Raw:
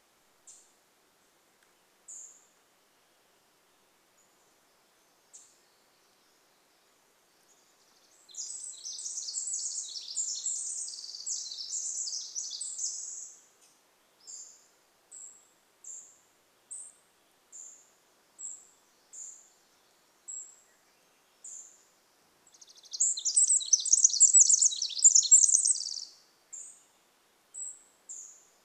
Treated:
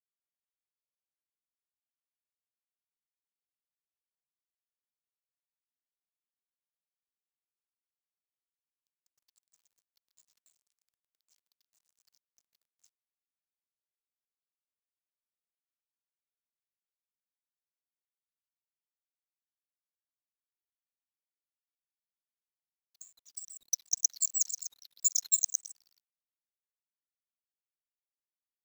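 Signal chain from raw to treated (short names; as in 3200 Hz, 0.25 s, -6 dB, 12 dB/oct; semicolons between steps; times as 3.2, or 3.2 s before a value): fifteen-band EQ 250 Hz -8 dB, 630 Hz -12 dB, 1600 Hz -4 dB, 4000 Hz +7 dB; frequency shift -84 Hz; power-law curve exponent 3; bit-crush 11-bit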